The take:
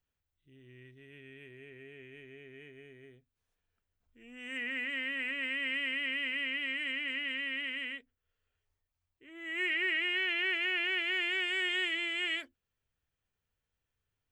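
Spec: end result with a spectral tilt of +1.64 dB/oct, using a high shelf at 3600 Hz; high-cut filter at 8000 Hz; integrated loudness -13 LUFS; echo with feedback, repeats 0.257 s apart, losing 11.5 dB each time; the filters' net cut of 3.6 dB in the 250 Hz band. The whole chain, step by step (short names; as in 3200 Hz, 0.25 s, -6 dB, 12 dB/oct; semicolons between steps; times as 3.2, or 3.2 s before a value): LPF 8000 Hz; bell 250 Hz -5 dB; high shelf 3600 Hz -5 dB; feedback echo 0.257 s, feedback 27%, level -11.5 dB; gain +20.5 dB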